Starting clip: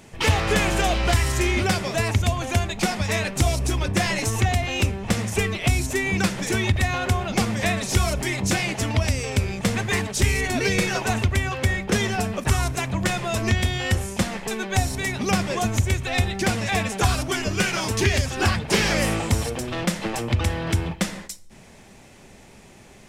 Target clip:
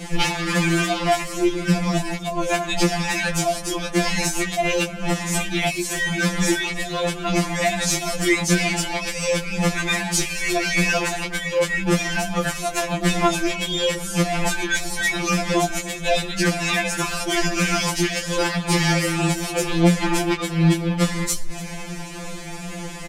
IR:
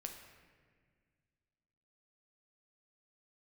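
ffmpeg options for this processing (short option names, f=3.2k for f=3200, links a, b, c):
-filter_complex "[0:a]asettb=1/sr,asplit=3[a][b][c];[a]atrim=end=1.204[d];[b]atrim=start=1.2:end=2.45,asetpts=PTS-STARTPTS,afade=t=in:d=0.004:c=qsin,afade=t=out:st=1.246:d=0.004:c=qsin,lowshelf=f=490:g=8.5[e];[c]atrim=start=2.446[f];[d][e]acrossfade=d=0.004:c1=hsin:c2=qsin[g];[g][f]acrossfade=d=0.004:c1=qsin:c2=hsin,acompressor=threshold=-31dB:ratio=16,flanger=delay=15.5:depth=3.2:speed=2.2,asplit=2[h][i];[i]aecho=0:1:294:0.112[j];[h][j]amix=inputs=2:normalize=0,alimiter=level_in=26.5dB:limit=-1dB:release=50:level=0:latency=1,afftfilt=real='re*2.83*eq(mod(b,8),0)':imag='im*2.83*eq(mod(b,8),0)':win_size=2048:overlap=0.75,volume=-6dB"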